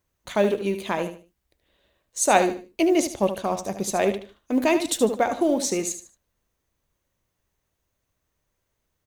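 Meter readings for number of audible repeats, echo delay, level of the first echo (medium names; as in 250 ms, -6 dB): 3, 75 ms, -10.0 dB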